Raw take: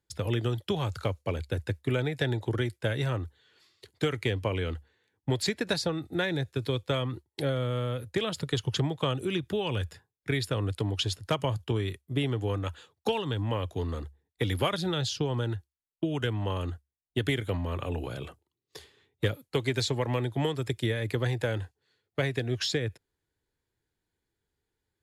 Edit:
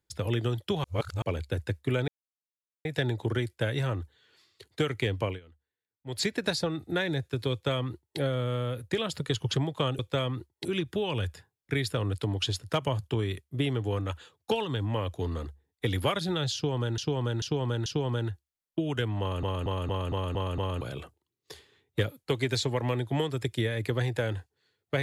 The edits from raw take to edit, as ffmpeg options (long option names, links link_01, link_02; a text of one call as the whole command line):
ffmpeg -i in.wav -filter_complex "[0:a]asplit=18[link_01][link_02][link_03][link_04][link_05][link_06][link_07][link_08][link_09][link_10][link_11][link_12][link_13][link_14][link_15][link_16][link_17][link_18];[link_01]atrim=end=0.842[link_19];[link_02]atrim=start=0.838:end=1.222,asetpts=PTS-STARTPTS,areverse[link_20];[link_03]atrim=start=1.218:end=2.08,asetpts=PTS-STARTPTS,afade=type=out:start_time=0.858:duration=0.004:curve=hsin,apad=pad_dur=0.77[link_21];[link_04]atrim=start=2.08:end=4.63,asetpts=PTS-STARTPTS,afade=type=in:duration=0.004:curve=hsin,afade=type=out:start_time=2.42:duration=0.13:silence=0.0794328[link_22];[link_05]atrim=start=4.63:end=5.29,asetpts=PTS-STARTPTS,volume=-22dB[link_23];[link_06]atrim=start=5.29:end=9.222,asetpts=PTS-STARTPTS,afade=type=in:duration=0.13:silence=0.0794328[link_24];[link_07]atrim=start=6.748:end=7.412[link_25];[link_08]atrim=start=9.218:end=15.552[link_26];[link_09]atrim=start=15.108:end=15.552[link_27];[link_10]atrim=start=15.108:end=15.552[link_28];[link_11]atrim=start=15.108:end=16.682[link_29];[link_12]atrim=start=16.448:end=16.682[link_30];[link_13]atrim=start=16.448:end=16.682[link_31];[link_14]atrim=start=16.448:end=16.682[link_32];[link_15]atrim=start=16.448:end=16.682[link_33];[link_16]atrim=start=16.448:end=16.682[link_34];[link_17]atrim=start=16.448:end=16.682[link_35];[link_18]atrim=start=18.058[link_36];[link_19][link_20]acrossfade=duration=0.004:curve1=hsin:curve2=hsin[link_37];[link_21][link_22][link_23][link_24]concat=n=4:v=0:a=1[link_38];[link_37][link_38]acrossfade=duration=0.004:curve1=hsin:curve2=hsin[link_39];[link_39][link_25]acrossfade=duration=0.004:curve1=hsin:curve2=hsin[link_40];[link_40][link_26]acrossfade=duration=0.004:curve1=hsin:curve2=hsin[link_41];[link_41][link_27]acrossfade=duration=0.004:curve1=hsin:curve2=hsin[link_42];[link_42][link_28]acrossfade=duration=0.004:curve1=hsin:curve2=hsin[link_43];[link_43][link_29]acrossfade=duration=0.004:curve1=hsin:curve2=hsin[link_44];[link_44][link_30]acrossfade=duration=0.004:curve1=hsin:curve2=hsin[link_45];[link_45][link_31]acrossfade=duration=0.004:curve1=hsin:curve2=hsin[link_46];[link_46][link_32]acrossfade=duration=0.004:curve1=hsin:curve2=hsin[link_47];[link_47][link_33]acrossfade=duration=0.004:curve1=hsin:curve2=hsin[link_48];[link_48][link_34]acrossfade=duration=0.004:curve1=hsin:curve2=hsin[link_49];[link_49][link_35]acrossfade=duration=0.004:curve1=hsin:curve2=hsin[link_50];[link_50][link_36]acrossfade=duration=0.004:curve1=hsin:curve2=hsin" out.wav